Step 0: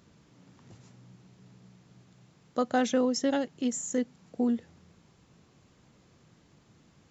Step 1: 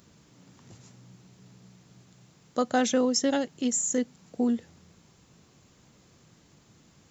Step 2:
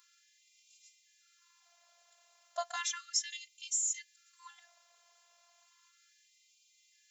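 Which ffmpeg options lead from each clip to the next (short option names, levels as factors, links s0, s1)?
-af "highshelf=f=6100:g=11.5,volume=1.19"
-af "afftfilt=real='hypot(re,im)*cos(PI*b)':imag='0':win_size=512:overlap=0.75,afftfilt=real='re*gte(b*sr/1024,440*pow(2100/440,0.5+0.5*sin(2*PI*0.34*pts/sr)))':imag='im*gte(b*sr/1024,440*pow(2100/440,0.5+0.5*sin(2*PI*0.34*pts/sr)))':win_size=1024:overlap=0.75"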